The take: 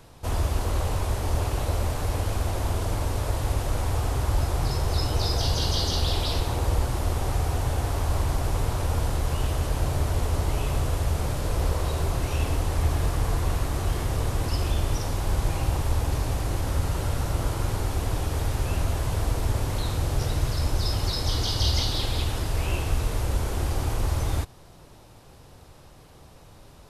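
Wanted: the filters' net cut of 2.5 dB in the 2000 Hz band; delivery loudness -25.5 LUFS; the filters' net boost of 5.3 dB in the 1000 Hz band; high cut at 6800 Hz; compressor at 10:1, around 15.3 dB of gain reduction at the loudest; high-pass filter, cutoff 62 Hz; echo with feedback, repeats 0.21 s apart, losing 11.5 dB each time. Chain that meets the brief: HPF 62 Hz; LPF 6800 Hz; bell 1000 Hz +8 dB; bell 2000 Hz -6.5 dB; compressor 10:1, threshold -37 dBFS; feedback echo 0.21 s, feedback 27%, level -11.5 dB; gain +15.5 dB

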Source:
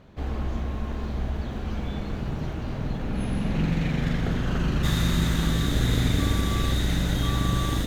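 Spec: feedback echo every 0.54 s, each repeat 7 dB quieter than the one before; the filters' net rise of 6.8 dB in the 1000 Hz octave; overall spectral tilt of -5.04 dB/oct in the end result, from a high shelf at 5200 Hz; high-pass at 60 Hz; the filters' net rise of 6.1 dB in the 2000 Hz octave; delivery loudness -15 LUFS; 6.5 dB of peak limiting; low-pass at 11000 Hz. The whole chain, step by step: HPF 60 Hz; LPF 11000 Hz; bell 1000 Hz +7 dB; bell 2000 Hz +4.5 dB; high shelf 5200 Hz +5 dB; limiter -16.5 dBFS; feedback echo 0.54 s, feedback 45%, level -7 dB; gain +11.5 dB

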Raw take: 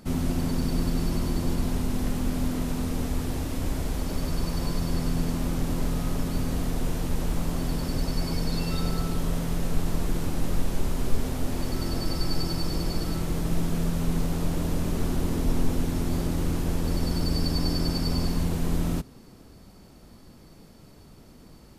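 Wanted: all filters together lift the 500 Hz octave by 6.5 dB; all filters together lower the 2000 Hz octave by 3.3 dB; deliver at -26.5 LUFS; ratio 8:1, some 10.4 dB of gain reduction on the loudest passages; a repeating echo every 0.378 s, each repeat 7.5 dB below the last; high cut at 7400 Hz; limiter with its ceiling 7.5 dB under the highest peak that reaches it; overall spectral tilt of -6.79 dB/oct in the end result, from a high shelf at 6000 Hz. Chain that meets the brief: LPF 7400 Hz; bell 500 Hz +8.5 dB; bell 2000 Hz -4.5 dB; high shelf 6000 Hz -3.5 dB; compressor 8:1, threshold -25 dBFS; limiter -25 dBFS; feedback echo 0.378 s, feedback 42%, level -7.5 dB; gain +9.5 dB

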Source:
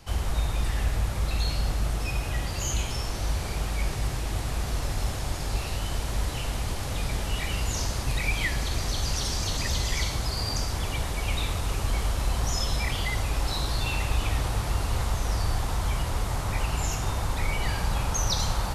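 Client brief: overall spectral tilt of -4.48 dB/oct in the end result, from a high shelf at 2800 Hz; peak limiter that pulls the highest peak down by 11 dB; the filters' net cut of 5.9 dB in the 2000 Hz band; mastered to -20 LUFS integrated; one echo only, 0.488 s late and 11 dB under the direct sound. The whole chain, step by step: bell 2000 Hz -5.5 dB; high shelf 2800 Hz -4 dB; limiter -24.5 dBFS; echo 0.488 s -11 dB; gain +14.5 dB

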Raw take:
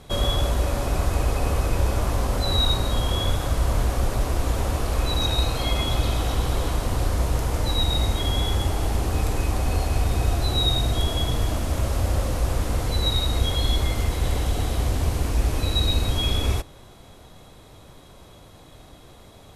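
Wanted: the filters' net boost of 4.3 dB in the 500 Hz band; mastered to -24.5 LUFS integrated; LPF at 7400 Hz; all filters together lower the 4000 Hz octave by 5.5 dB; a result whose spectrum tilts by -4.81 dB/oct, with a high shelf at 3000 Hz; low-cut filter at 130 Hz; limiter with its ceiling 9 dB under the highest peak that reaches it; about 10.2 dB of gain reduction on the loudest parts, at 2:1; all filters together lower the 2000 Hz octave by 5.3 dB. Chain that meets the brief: HPF 130 Hz; LPF 7400 Hz; bell 500 Hz +5.5 dB; bell 2000 Hz -7.5 dB; high shelf 3000 Hz +6 dB; bell 4000 Hz -8 dB; compressor 2:1, threshold -42 dBFS; gain +17 dB; limiter -15 dBFS

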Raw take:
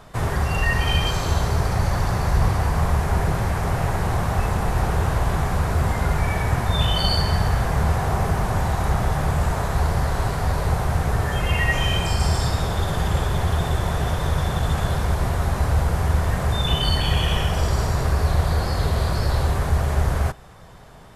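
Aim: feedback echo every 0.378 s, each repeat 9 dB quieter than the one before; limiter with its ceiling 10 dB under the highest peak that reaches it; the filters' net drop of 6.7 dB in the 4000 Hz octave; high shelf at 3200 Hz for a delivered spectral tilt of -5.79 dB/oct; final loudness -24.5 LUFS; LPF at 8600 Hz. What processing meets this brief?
LPF 8600 Hz; high shelf 3200 Hz -5.5 dB; bell 4000 Hz -5 dB; limiter -18 dBFS; feedback echo 0.378 s, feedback 35%, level -9 dB; gain +2.5 dB

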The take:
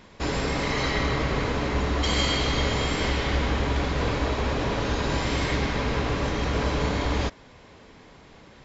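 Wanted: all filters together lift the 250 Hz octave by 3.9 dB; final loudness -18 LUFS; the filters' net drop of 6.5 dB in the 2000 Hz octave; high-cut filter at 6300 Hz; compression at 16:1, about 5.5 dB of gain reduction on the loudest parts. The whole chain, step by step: LPF 6300 Hz; bell 250 Hz +5 dB; bell 2000 Hz -8 dB; compressor 16:1, threshold -25 dBFS; gain +12.5 dB

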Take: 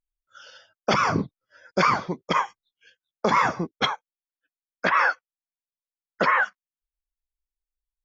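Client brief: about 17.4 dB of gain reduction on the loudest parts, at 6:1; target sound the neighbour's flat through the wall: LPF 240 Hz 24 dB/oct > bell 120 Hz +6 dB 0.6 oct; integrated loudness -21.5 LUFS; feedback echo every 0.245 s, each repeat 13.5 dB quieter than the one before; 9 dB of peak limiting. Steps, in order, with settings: compressor 6:1, threshold -36 dBFS; limiter -29.5 dBFS; LPF 240 Hz 24 dB/oct; bell 120 Hz +6 dB 0.6 oct; feedback echo 0.245 s, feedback 21%, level -13.5 dB; gain +29.5 dB

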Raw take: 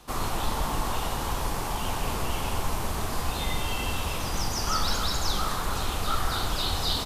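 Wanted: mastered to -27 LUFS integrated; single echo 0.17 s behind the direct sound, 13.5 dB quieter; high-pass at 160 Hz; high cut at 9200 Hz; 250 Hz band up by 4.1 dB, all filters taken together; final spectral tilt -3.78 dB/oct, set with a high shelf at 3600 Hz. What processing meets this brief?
HPF 160 Hz; LPF 9200 Hz; bell 250 Hz +6.5 dB; high shelf 3600 Hz +4 dB; echo 0.17 s -13.5 dB; gain +1.5 dB

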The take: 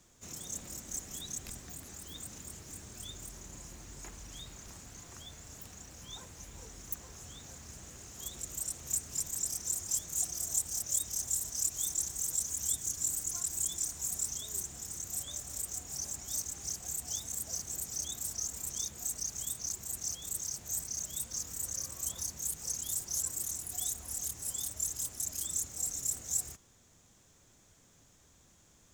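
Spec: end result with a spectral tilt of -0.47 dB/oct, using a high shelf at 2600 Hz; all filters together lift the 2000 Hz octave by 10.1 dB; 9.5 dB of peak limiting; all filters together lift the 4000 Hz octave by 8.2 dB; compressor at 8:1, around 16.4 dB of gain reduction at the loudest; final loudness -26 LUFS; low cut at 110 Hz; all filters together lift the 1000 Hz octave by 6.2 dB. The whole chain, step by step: HPF 110 Hz; bell 1000 Hz +5 dB; bell 2000 Hz +8 dB; high shelf 2600 Hz +4.5 dB; bell 4000 Hz +4.5 dB; compressor 8:1, threshold -40 dBFS; gain +16 dB; limiter -16 dBFS

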